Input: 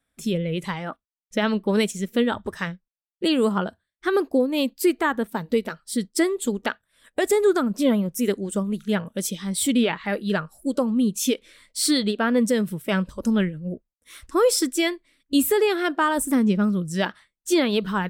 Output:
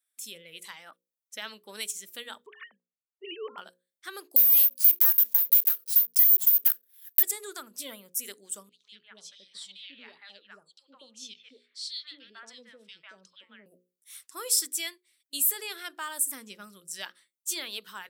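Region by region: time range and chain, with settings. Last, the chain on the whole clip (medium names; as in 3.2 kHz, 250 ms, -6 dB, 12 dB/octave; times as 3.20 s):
2.46–3.58 s: formants replaced by sine waves + peaking EQ 560 Hz +7 dB 1.3 oct
4.36–7.23 s: block-companded coder 3-bit + compression, threshold -22 dBFS + careless resampling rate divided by 3×, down filtered, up zero stuff
8.69–13.66 s: four-pole ladder low-pass 5.1 kHz, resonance 35% + three bands offset in time highs, mids, lows 150/230 ms, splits 770/2500 Hz
whole clip: high-pass 150 Hz; differentiator; hum notches 60/120/180/240/300/360/420/480/540 Hz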